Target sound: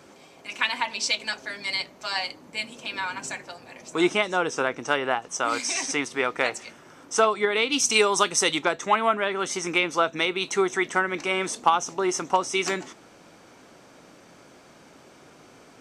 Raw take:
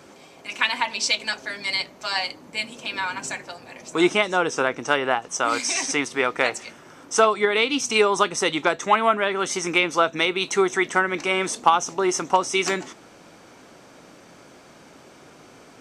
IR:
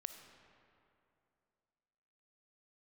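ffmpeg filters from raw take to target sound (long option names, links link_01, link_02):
-filter_complex "[0:a]asettb=1/sr,asplit=3[link_01][link_02][link_03];[link_01]atrim=end=7.724[link_04];[link_02]atrim=start=7.72:end=8.59,asetpts=PTS-STARTPTS,afade=type=in:duration=0.004:curve=qsin,afade=type=out:start_time=0.866:duration=0.004:curve=qsin,highshelf=frequency=3700:gain=10.5[link_05];[link_03]atrim=start=8.586[link_06];[link_04][link_05]acrossfade=duration=0.004:curve1=hsin:curve2=qsin[link_07];[link_07][link_06]acrossfade=duration=0.004:curve1=qsin:curve2=hsin,volume=-3dB"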